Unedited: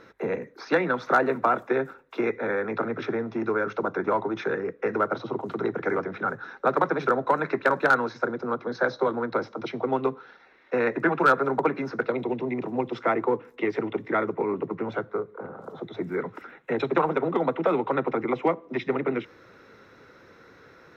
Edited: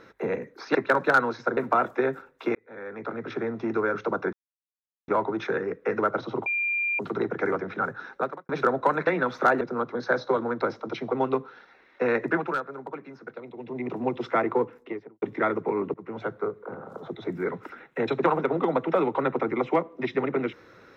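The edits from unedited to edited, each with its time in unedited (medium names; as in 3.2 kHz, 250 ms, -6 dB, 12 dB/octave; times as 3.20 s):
0.75–1.29 s: swap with 7.51–8.33 s
2.27–3.33 s: fade in
4.05 s: insert silence 0.75 s
5.43 s: add tone 2.39 kHz -23.5 dBFS 0.53 s
6.59–6.93 s: fade out quadratic
10.96–12.67 s: dip -13.5 dB, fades 0.38 s
13.31–13.94 s: studio fade out
14.66–15.07 s: fade in, from -17 dB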